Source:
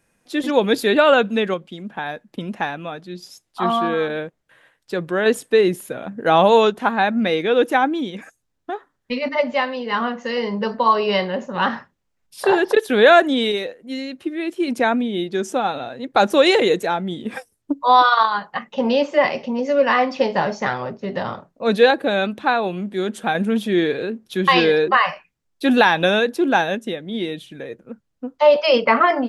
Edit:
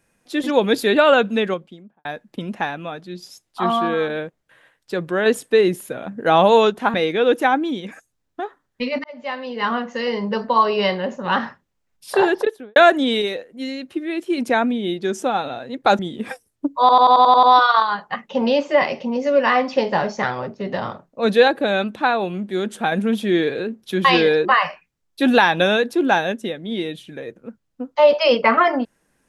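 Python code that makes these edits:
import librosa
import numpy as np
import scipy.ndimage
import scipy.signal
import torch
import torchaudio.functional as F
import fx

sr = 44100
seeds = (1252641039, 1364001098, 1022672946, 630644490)

y = fx.studio_fade_out(x, sr, start_s=1.45, length_s=0.6)
y = fx.studio_fade_out(y, sr, start_s=12.55, length_s=0.51)
y = fx.edit(y, sr, fx.cut(start_s=6.94, length_s=0.3),
    fx.fade_in_span(start_s=9.34, length_s=0.59),
    fx.cut(start_s=16.29, length_s=0.76),
    fx.stutter(start_s=17.86, slice_s=0.09, count=8), tone=tone)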